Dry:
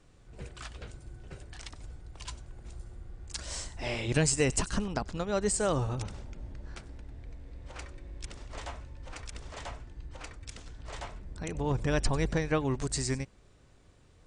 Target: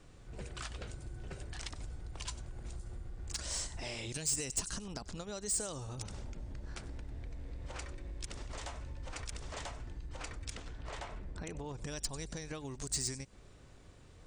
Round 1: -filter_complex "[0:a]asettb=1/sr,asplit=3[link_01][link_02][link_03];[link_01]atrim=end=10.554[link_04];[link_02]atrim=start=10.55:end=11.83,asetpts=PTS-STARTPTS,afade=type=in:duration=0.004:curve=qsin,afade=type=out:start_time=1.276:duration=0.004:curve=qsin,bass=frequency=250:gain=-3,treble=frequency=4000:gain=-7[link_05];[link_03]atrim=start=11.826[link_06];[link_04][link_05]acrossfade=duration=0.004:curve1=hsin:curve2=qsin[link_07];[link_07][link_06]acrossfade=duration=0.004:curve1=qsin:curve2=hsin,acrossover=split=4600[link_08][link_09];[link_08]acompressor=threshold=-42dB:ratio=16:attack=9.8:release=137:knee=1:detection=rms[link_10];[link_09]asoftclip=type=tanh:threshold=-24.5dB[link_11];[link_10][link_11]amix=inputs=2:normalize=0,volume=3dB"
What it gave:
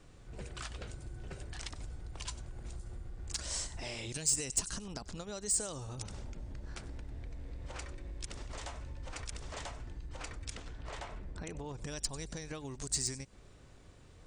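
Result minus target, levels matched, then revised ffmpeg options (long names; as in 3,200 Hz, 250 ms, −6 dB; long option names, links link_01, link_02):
soft clipping: distortion −7 dB
-filter_complex "[0:a]asettb=1/sr,asplit=3[link_01][link_02][link_03];[link_01]atrim=end=10.554[link_04];[link_02]atrim=start=10.55:end=11.83,asetpts=PTS-STARTPTS,afade=type=in:duration=0.004:curve=qsin,afade=type=out:start_time=1.276:duration=0.004:curve=qsin,bass=frequency=250:gain=-3,treble=frequency=4000:gain=-7[link_05];[link_03]atrim=start=11.826[link_06];[link_04][link_05]acrossfade=duration=0.004:curve1=hsin:curve2=qsin[link_07];[link_07][link_06]acrossfade=duration=0.004:curve1=qsin:curve2=hsin,acrossover=split=4600[link_08][link_09];[link_08]acompressor=threshold=-42dB:ratio=16:attack=9.8:release=137:knee=1:detection=rms[link_10];[link_09]asoftclip=type=tanh:threshold=-31.5dB[link_11];[link_10][link_11]amix=inputs=2:normalize=0,volume=3dB"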